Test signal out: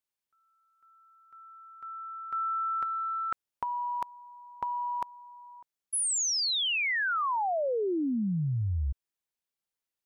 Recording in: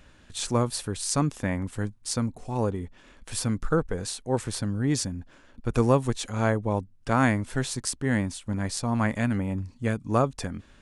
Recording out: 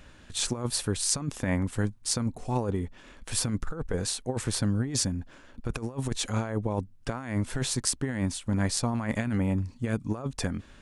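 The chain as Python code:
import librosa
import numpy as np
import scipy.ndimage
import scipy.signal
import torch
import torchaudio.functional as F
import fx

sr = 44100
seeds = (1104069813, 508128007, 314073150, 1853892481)

y = fx.over_compress(x, sr, threshold_db=-27.0, ratio=-0.5)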